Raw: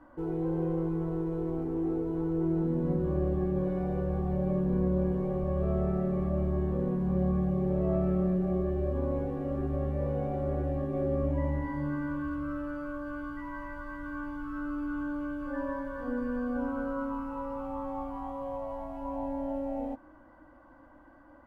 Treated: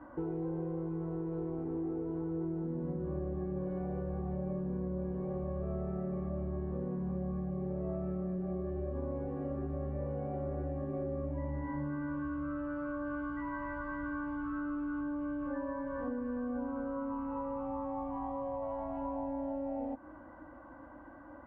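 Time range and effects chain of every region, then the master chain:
0:15.01–0:18.63: high-frequency loss of the air 120 metres + notch filter 1,400 Hz, Q 6.1
whole clip: high-pass filter 46 Hz; downward compressor, threshold −39 dBFS; low-pass filter 2,100 Hz 12 dB per octave; level +4.5 dB

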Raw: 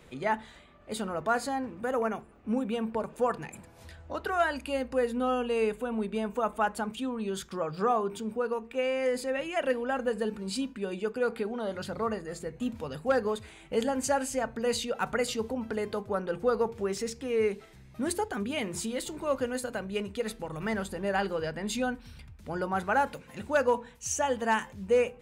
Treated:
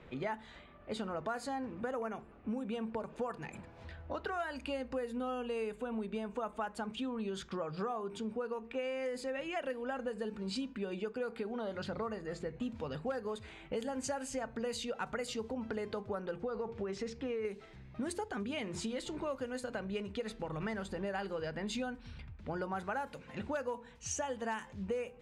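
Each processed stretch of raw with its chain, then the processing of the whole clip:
0:16.34–0:17.45: high-shelf EQ 7,000 Hz −11.5 dB + downward compressor, threshold −27 dBFS
whole clip: low-pass that shuts in the quiet parts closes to 2,700 Hz, open at −22.5 dBFS; downward compressor, threshold −35 dBFS

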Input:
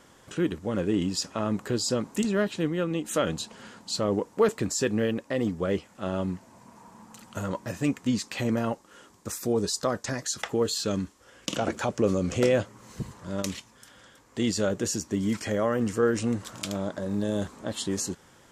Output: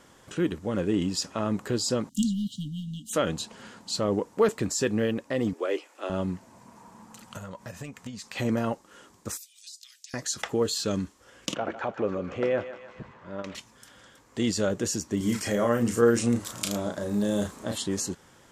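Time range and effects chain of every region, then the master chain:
0:02.09–0:03.13: leveller curve on the samples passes 1 + linear-phase brick-wall band-stop 280–2,800 Hz + expander for the loud parts, over −35 dBFS
0:05.53–0:06.10: Butterworth high-pass 300 Hz 48 dB per octave + parametric band 2,500 Hz +5.5 dB 0.27 octaves
0:07.25–0:08.36: transient designer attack +7 dB, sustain 0 dB + parametric band 320 Hz −10.5 dB 0.58 octaves + downward compressor 5 to 1, threshold −36 dBFS
0:09.37–0:10.14: Butterworth high-pass 2,600 Hz + downward compressor 10 to 1, threshold −41 dBFS
0:11.54–0:13.55: low-pass filter 2,000 Hz + low-shelf EQ 290 Hz −11.5 dB + feedback echo with a high-pass in the loop 152 ms, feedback 62%, high-pass 630 Hz, level −10 dB
0:15.17–0:17.78: high-shelf EQ 8,000 Hz +11 dB + double-tracking delay 34 ms −5 dB
whole clip: no processing

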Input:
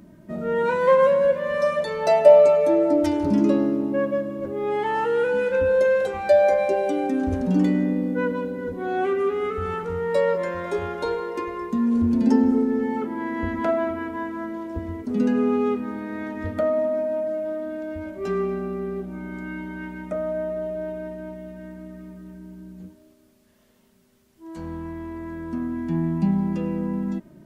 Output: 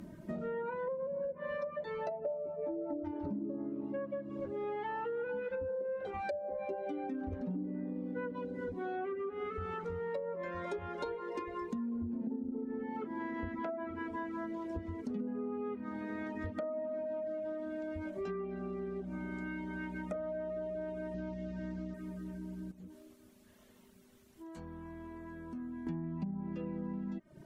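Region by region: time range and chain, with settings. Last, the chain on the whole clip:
0:21.14–0:21.94: low-pass filter 5,600 Hz 24 dB per octave + bass and treble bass +5 dB, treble +9 dB
0:22.71–0:25.87: parametric band 4,900 Hz −3 dB 0.21 octaves + downward compressor 2.5 to 1, threshold −46 dBFS + double-tracking delay 20 ms −11 dB
whole clip: reverb reduction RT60 0.59 s; treble cut that deepens with the level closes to 510 Hz, closed at −16 dBFS; downward compressor 6 to 1, threshold −37 dBFS

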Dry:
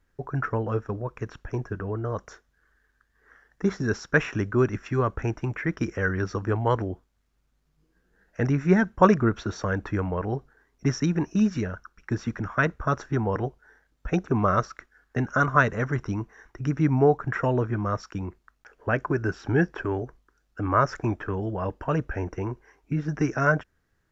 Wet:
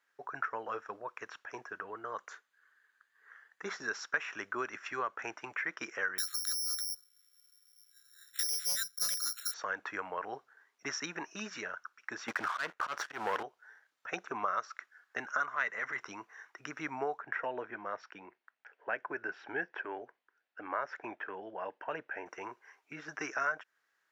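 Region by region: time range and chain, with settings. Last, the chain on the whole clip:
0:01.83–0:03.66: parametric band 660 Hz −4.5 dB 0.57 octaves + notch filter 5,500 Hz, Q 6.3
0:06.18–0:09.54: linear-phase brick-wall band-stop 210–1,200 Hz + bad sample-rate conversion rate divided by 8×, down filtered, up zero stuff + saturating transformer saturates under 4,000 Hz
0:12.28–0:13.43: leveller curve on the samples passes 3 + volume swells 213 ms
0:15.51–0:16.01: parametric band 2,000 Hz +11.5 dB 0.24 octaves + transient designer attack −12 dB, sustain +1 dB
0:17.20–0:22.26: band-pass filter 110–2,600 Hz + parametric band 1,200 Hz −9.5 dB 0.48 octaves
whole clip: Bessel high-pass filter 1,300 Hz, order 2; high-shelf EQ 4,300 Hz −7.5 dB; downward compressor 3 to 1, threshold −35 dBFS; level +3 dB

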